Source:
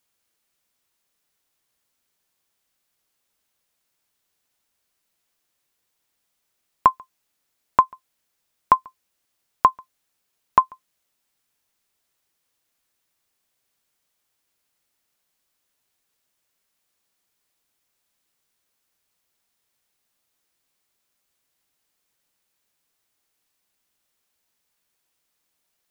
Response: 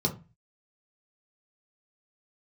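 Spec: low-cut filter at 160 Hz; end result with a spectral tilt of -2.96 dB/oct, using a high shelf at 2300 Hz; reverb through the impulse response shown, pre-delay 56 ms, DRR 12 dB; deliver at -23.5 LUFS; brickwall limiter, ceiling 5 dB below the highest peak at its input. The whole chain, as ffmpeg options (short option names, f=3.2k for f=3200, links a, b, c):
-filter_complex "[0:a]highpass=160,highshelf=f=2.3k:g=-3.5,alimiter=limit=-6.5dB:level=0:latency=1,asplit=2[a][b];[1:a]atrim=start_sample=2205,adelay=56[c];[b][c]afir=irnorm=-1:irlink=0,volume=-20dB[d];[a][d]amix=inputs=2:normalize=0,volume=3.5dB"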